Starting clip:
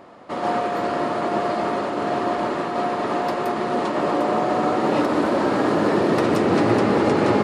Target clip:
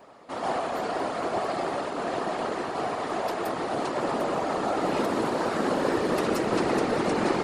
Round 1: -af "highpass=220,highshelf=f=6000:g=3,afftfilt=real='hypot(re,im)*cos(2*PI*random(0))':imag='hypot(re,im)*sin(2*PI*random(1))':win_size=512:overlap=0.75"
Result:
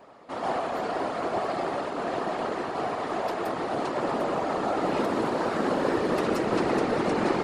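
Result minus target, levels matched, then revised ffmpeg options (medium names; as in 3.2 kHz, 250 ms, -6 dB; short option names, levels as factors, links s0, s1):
8 kHz band -4.5 dB
-af "highpass=220,highshelf=f=6000:g=10.5,afftfilt=real='hypot(re,im)*cos(2*PI*random(0))':imag='hypot(re,im)*sin(2*PI*random(1))':win_size=512:overlap=0.75"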